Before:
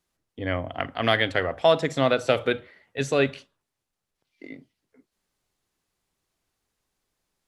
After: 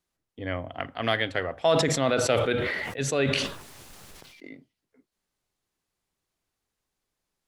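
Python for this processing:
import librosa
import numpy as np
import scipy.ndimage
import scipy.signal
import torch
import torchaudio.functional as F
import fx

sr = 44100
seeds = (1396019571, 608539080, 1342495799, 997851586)

y = fx.sustainer(x, sr, db_per_s=27.0, at=(1.67, 4.49))
y = y * 10.0 ** (-4.0 / 20.0)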